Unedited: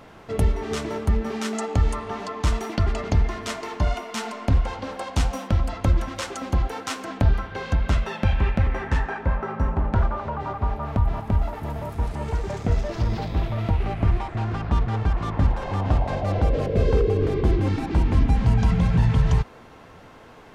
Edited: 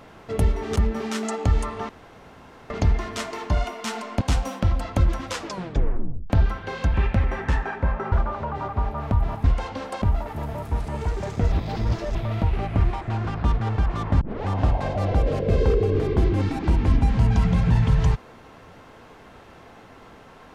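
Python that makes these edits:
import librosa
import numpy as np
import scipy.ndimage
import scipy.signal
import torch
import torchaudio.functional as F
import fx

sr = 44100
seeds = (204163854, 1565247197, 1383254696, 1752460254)

y = fx.edit(x, sr, fx.cut(start_s=0.76, length_s=0.3),
    fx.room_tone_fill(start_s=2.19, length_s=0.81),
    fx.move(start_s=4.51, length_s=0.58, to_s=11.29),
    fx.tape_stop(start_s=6.17, length_s=1.01),
    fx.cut(start_s=7.82, length_s=0.55),
    fx.cut(start_s=9.55, length_s=0.42),
    fx.reverse_span(start_s=12.79, length_s=0.63),
    fx.tape_start(start_s=15.48, length_s=0.26), tone=tone)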